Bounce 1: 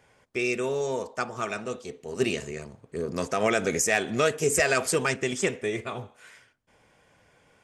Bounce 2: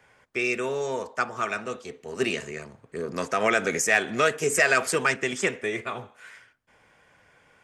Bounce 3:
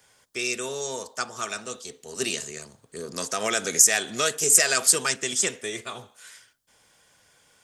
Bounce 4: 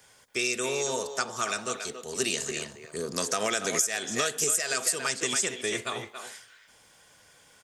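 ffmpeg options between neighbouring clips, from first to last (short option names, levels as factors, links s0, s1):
-filter_complex "[0:a]equalizer=f=1600:w=0.82:g=7,acrossover=split=120|1200|1700[s0][s1][s2][s3];[s0]acompressor=threshold=0.002:ratio=6[s4];[s4][s1][s2][s3]amix=inputs=4:normalize=0,volume=0.841"
-af "aexciter=amount=7.4:drive=1.1:freq=3300,volume=0.596"
-filter_complex "[0:a]asplit=2[s0][s1];[s1]adelay=280,highpass=300,lowpass=3400,asoftclip=type=hard:threshold=0.282,volume=0.398[s2];[s0][s2]amix=inputs=2:normalize=0,acompressor=threshold=0.0501:ratio=8,volume=1.33"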